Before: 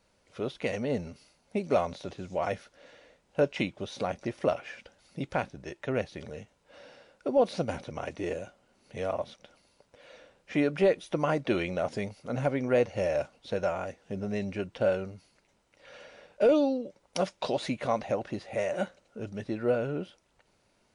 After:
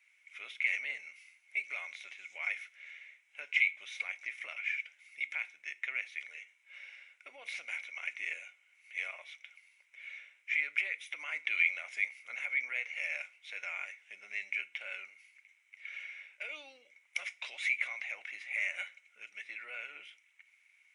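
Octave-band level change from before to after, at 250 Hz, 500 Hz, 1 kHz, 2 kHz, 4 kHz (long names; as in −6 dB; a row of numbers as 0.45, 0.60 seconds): below −40 dB, −31.0 dB, −19.0 dB, +7.5 dB, −2.5 dB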